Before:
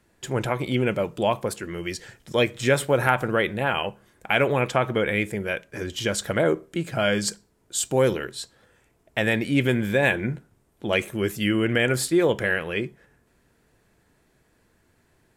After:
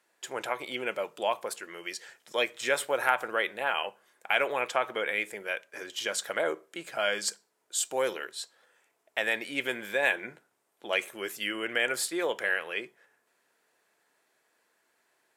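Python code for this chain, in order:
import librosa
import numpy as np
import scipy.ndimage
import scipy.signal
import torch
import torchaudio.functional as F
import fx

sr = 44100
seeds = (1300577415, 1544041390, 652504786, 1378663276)

y = scipy.signal.sosfilt(scipy.signal.butter(2, 600.0, 'highpass', fs=sr, output='sos'), x)
y = F.gain(torch.from_numpy(y), -3.5).numpy()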